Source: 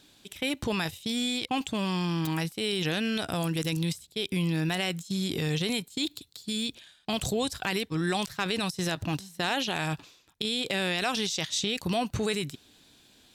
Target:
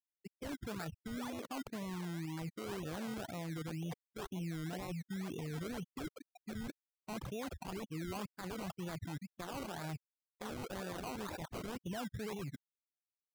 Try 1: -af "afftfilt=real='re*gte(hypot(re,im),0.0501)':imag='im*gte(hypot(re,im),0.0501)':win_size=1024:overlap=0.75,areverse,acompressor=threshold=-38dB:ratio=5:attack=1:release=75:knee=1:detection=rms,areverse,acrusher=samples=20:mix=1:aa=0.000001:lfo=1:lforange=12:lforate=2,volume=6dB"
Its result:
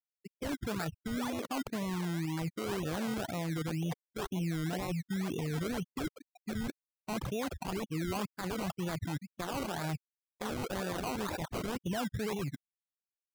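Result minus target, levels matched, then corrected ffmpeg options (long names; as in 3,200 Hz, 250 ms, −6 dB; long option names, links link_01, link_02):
downward compressor: peak gain reduction −7 dB
-af "afftfilt=real='re*gte(hypot(re,im),0.0501)':imag='im*gte(hypot(re,im),0.0501)':win_size=1024:overlap=0.75,areverse,acompressor=threshold=-46.5dB:ratio=5:attack=1:release=75:knee=1:detection=rms,areverse,acrusher=samples=20:mix=1:aa=0.000001:lfo=1:lforange=12:lforate=2,volume=6dB"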